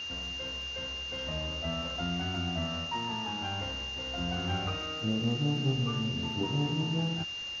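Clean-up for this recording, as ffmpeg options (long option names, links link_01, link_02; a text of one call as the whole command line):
ffmpeg -i in.wav -af "adeclick=threshold=4,bandreject=frequency=2800:width=30,afwtdn=0.005" out.wav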